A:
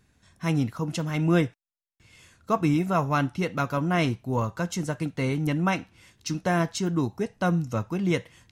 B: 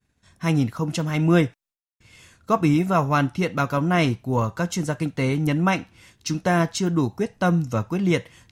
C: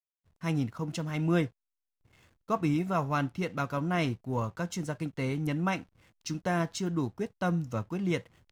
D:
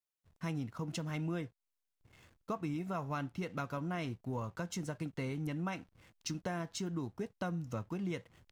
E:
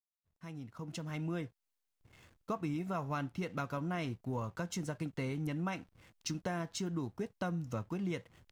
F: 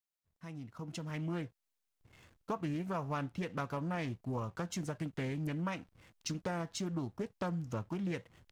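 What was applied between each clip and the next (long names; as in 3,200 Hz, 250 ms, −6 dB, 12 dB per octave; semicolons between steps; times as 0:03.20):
downward expander −56 dBFS; level +4 dB
slack as between gear wheels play −43 dBFS; level −9 dB
downward compressor 4 to 1, threshold −36 dBFS, peak gain reduction 13 dB
fade in at the beginning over 1.54 s; level +1 dB
highs frequency-modulated by the lows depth 0.28 ms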